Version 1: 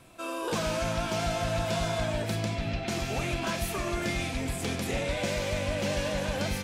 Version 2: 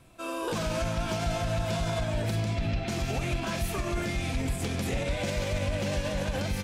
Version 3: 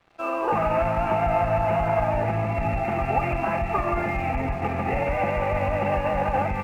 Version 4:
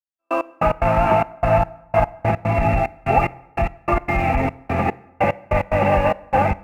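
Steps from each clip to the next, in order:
low shelf 140 Hz +8.5 dB; limiter -23 dBFS, peak gain reduction 8.5 dB; upward expander 1.5:1, over -42 dBFS; gain +3 dB
rippled Chebyshev low-pass 2800 Hz, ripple 6 dB; small resonant body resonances 840/1200 Hz, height 17 dB, ringing for 50 ms; crossover distortion -56.5 dBFS; gain +8 dB
step gate "...x..x.xxxx..xx" 147 bpm -60 dB; reverb RT60 1.0 s, pre-delay 13 ms, DRR 20 dB; gain +7 dB

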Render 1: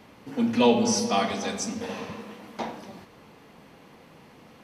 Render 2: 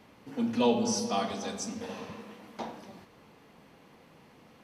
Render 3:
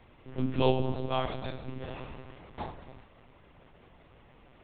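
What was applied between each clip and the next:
dynamic EQ 2100 Hz, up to -6 dB, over -46 dBFS, Q 2.3; gain -5.5 dB
monotone LPC vocoder at 8 kHz 130 Hz

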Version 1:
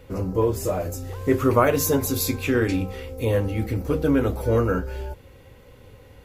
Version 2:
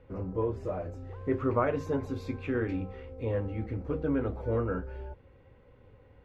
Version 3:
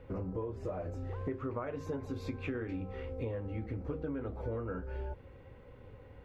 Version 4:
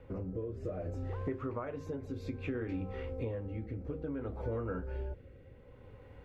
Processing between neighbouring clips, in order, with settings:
LPF 2000 Hz 12 dB/oct; gain -9 dB
compressor 12:1, threshold -38 dBFS, peak gain reduction 17 dB; gain +4 dB
rotary speaker horn 0.6 Hz; gain +1.5 dB

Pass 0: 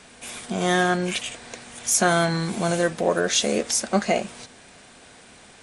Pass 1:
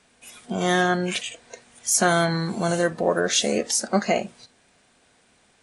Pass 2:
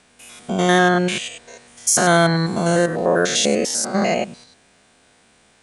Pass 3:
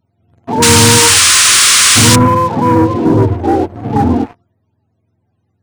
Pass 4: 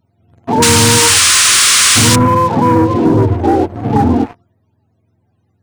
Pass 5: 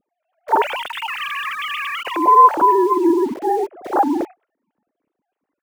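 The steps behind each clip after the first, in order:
spectral noise reduction 12 dB
stepped spectrum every 0.1 s; gain +6.5 dB
spectrum mirrored in octaves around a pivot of 410 Hz; painted sound noise, 0.62–2.16, 1000–10000 Hz -15 dBFS; sample leveller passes 3; gain -1 dB
compressor, threshold -10 dBFS, peak gain reduction 5.5 dB; gain +3 dB
sine-wave speech; in parallel at -10 dB: bit-crush 4-bit; on the sum: gain -9.5 dB

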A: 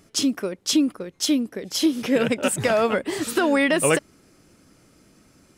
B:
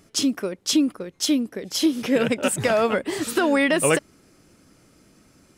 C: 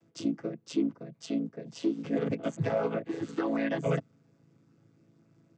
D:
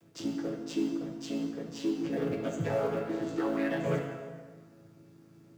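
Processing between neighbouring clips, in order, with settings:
nothing audible
chord vocoder major triad, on A2; gain -8.5 dB
G.711 law mismatch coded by mu; plate-style reverb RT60 1.6 s, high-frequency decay 0.75×, DRR 1 dB; gain -4 dB

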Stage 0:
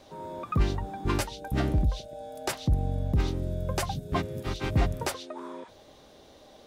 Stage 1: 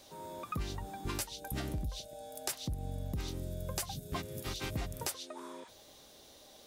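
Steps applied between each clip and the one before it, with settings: pre-emphasis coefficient 0.8; compressor, threshold -40 dBFS, peak gain reduction 8.5 dB; gain +6.5 dB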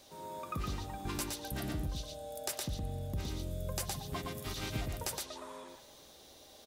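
on a send: echo 0.116 s -3 dB; on the sum: spring tank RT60 1.9 s, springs 51 ms, chirp 50 ms, DRR 12.5 dB; gain -1.5 dB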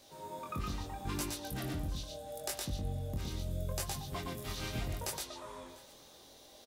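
chorus 0.76 Hz, delay 20 ms, depth 4.8 ms; echo 0.697 s -23 dB; gain +2.5 dB

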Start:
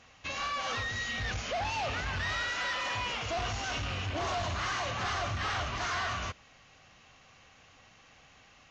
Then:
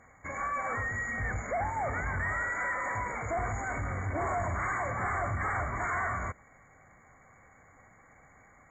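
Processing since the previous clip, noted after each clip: FFT band-reject 2300–6700 Hz; gain +2 dB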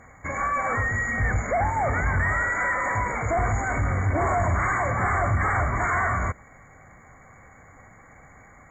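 low shelf 210 Hz +4 dB; gain +7.5 dB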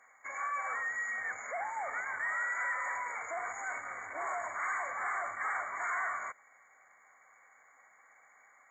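HPF 930 Hz 12 dB/oct; gain -8.5 dB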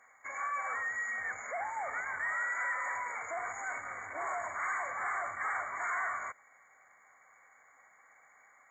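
low shelf 97 Hz +12 dB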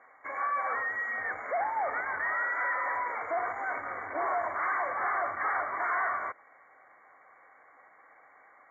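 EQ curve 200 Hz 0 dB, 310 Hz +9 dB, 2000 Hz -1 dB, 5100 Hz -27 dB; gain +3.5 dB

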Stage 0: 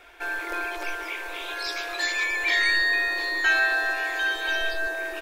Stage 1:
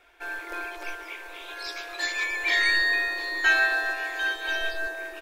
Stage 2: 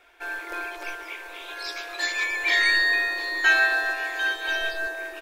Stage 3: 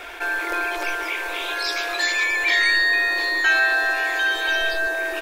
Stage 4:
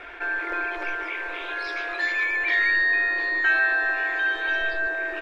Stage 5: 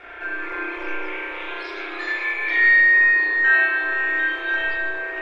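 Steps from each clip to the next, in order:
upward expander 1.5:1, over -37 dBFS; gain +1 dB
low shelf 160 Hz -5.5 dB; gain +2 dB
fast leveller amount 50%
EQ curve 270 Hz 0 dB, 860 Hz -4 dB, 1800 Hz +1 dB, 14000 Hz -29 dB; gain -2.5 dB
spring tank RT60 1.4 s, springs 32 ms, chirp 50 ms, DRR -6.5 dB; gain -4 dB

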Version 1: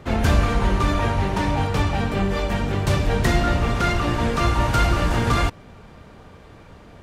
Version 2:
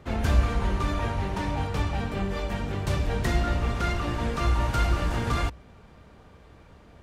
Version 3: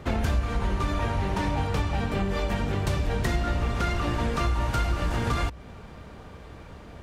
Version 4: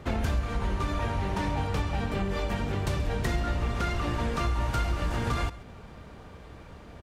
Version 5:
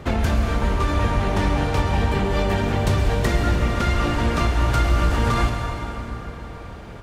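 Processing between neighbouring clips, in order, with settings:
bell 62 Hz +9.5 dB 0.23 oct; gain -7.5 dB
compressor 4:1, threshold -31 dBFS, peak gain reduction 13.5 dB; gain +7.5 dB
echo 0.135 s -18.5 dB; gain -2.5 dB
plate-style reverb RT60 3.9 s, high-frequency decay 0.65×, pre-delay 0.1 s, DRR 3.5 dB; gain +7 dB

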